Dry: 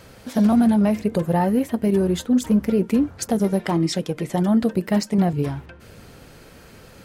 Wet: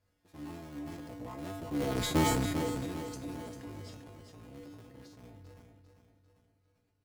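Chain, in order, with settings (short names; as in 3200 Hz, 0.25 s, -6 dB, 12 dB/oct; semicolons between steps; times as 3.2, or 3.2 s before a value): cycle switcher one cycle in 3, inverted; Doppler pass-by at 2.11, 23 m/s, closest 2.1 m; low shelf 250 Hz +5.5 dB; resonator 97 Hz, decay 0.45 s, harmonics odd, mix 90%; on a send: feedback echo 0.396 s, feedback 46%, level -8 dB; on the sum: sustainer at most 29 dB/s; gain +6 dB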